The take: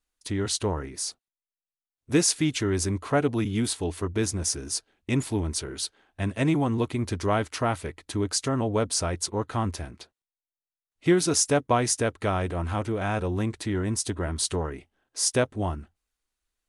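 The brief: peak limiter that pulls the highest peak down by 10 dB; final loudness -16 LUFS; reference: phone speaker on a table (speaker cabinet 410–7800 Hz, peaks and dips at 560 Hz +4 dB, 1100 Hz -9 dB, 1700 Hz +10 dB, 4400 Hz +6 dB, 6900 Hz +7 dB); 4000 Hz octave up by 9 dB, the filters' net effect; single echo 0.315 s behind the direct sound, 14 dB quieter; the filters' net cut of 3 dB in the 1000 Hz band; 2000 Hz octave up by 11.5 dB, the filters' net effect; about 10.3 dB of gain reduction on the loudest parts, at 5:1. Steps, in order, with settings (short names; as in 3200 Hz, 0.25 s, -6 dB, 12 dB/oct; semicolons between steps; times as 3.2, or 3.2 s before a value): bell 1000 Hz -6 dB; bell 2000 Hz +9 dB; bell 4000 Hz +5 dB; compressor 5:1, threshold -28 dBFS; limiter -24.5 dBFS; speaker cabinet 410–7800 Hz, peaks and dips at 560 Hz +4 dB, 1100 Hz -9 dB, 1700 Hz +10 dB, 4400 Hz +6 dB, 6900 Hz +7 dB; echo 0.315 s -14 dB; gain +18 dB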